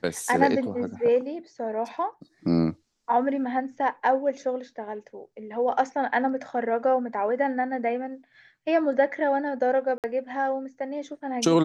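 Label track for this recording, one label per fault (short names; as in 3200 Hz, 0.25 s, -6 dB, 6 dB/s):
9.980000	10.040000	gap 58 ms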